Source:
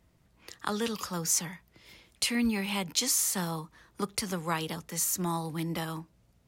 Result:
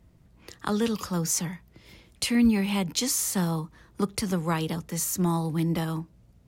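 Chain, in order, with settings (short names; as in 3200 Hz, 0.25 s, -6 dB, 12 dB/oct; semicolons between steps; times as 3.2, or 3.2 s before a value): low shelf 470 Hz +9.5 dB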